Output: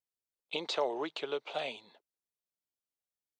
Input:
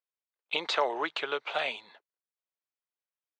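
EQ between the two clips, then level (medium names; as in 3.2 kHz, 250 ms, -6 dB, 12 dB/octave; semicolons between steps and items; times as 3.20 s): peaking EQ 1.6 kHz -15 dB 2.1 oct; treble shelf 6.9 kHz -4.5 dB; +2.5 dB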